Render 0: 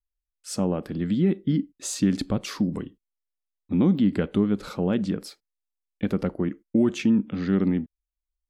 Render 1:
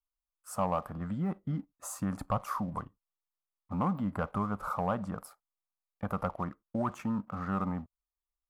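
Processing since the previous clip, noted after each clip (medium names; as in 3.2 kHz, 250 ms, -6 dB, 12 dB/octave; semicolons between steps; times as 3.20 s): FFT filter 110 Hz 0 dB, 370 Hz -16 dB, 650 Hz +7 dB, 1.2 kHz +14 dB, 1.7 kHz -5 dB, 3.8 kHz -21 dB, 12 kHz +3 dB; waveshaping leveller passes 1; trim -7 dB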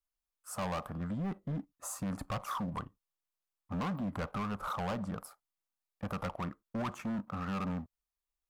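overload inside the chain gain 32.5 dB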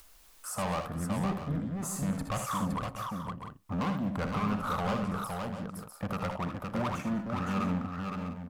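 multi-tap echo 62/77/199/514/648/694 ms -10/-8.5/-19.5/-4.5/-12/-15 dB; upward compressor, threshold -37 dBFS; trim +3 dB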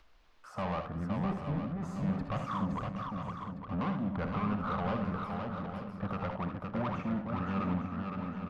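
distance through air 250 m; delay 860 ms -9 dB; trim -1.5 dB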